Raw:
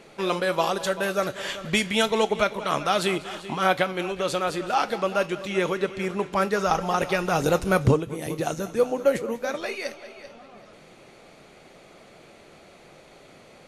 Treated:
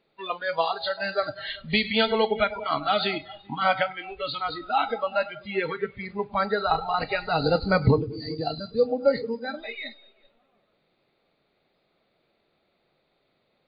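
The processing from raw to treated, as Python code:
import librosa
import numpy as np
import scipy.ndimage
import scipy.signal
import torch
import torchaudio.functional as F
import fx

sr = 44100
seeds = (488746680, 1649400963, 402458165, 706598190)

y = fx.freq_compress(x, sr, knee_hz=3500.0, ratio=4.0)
y = fx.echo_feedback(y, sr, ms=102, feedback_pct=51, wet_db=-13.0)
y = fx.noise_reduce_blind(y, sr, reduce_db=21)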